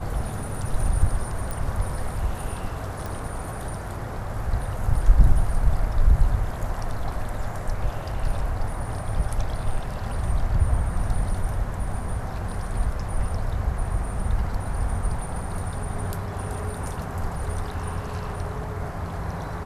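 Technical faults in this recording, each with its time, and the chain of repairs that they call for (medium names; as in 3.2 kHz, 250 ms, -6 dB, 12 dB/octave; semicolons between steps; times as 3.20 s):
1.51 s: pop
3.06 s: pop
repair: de-click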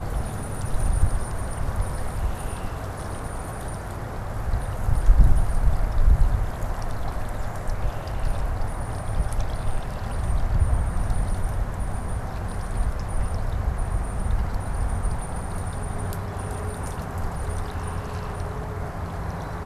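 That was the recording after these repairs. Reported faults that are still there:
3.06 s: pop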